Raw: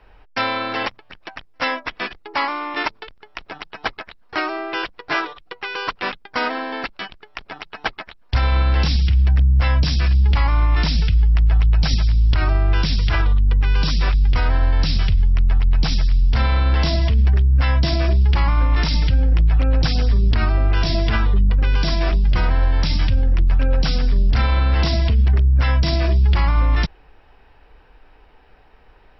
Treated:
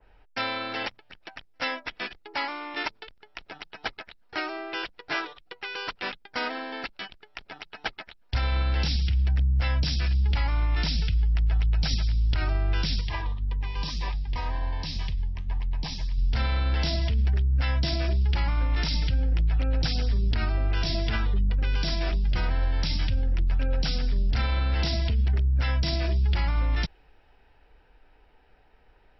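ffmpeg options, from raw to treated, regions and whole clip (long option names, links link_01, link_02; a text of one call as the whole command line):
ffmpeg -i in.wav -filter_complex "[0:a]asettb=1/sr,asplit=3[link_01][link_02][link_03];[link_01]atrim=end=13.014[link_04];[link_02]atrim=start=13.01:end=16.18,asetpts=PTS-STARTPTS,afade=type=in:duration=0.004:curve=qsin,afade=type=out:start_time=3.166:duration=0.004:curve=qsin,equalizer=frequency=980:width_type=o:width=0.4:gain=11,flanger=delay=4.9:depth=7.9:regen=-78:speed=1.9:shape=triangular,asuperstop=centerf=1400:order=12:qfactor=4.9[link_05];[link_03]atrim=start=16.176[link_06];[link_04][link_05]acrossfade=duration=0.004:curve1=hsin:curve2=qsin[link_07];[link_07][link_06]acrossfade=duration=0.004:curve1=qsin:curve2=hsin,bandreject=frequency=1100:width=6.4,adynamicequalizer=threshold=0.0112:dfrequency=2300:dqfactor=0.7:tfrequency=2300:tqfactor=0.7:attack=5:release=100:ratio=0.375:range=2:mode=boostabove:tftype=highshelf,volume=-8.5dB" out.wav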